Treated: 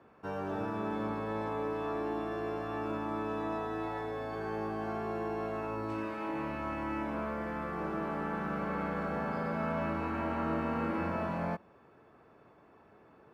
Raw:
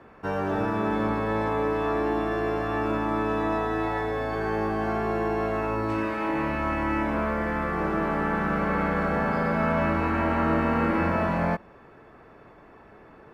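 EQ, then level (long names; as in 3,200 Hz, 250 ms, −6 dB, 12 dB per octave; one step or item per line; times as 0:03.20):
high-pass filter 78 Hz
parametric band 1,900 Hz −4.5 dB 0.46 octaves
−9.0 dB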